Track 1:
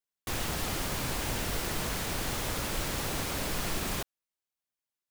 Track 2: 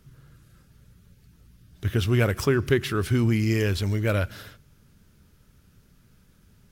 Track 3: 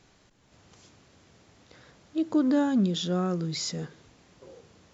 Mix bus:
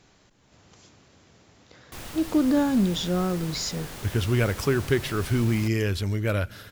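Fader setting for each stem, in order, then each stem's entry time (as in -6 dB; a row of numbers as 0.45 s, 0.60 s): -6.5 dB, -1.5 dB, +2.0 dB; 1.65 s, 2.20 s, 0.00 s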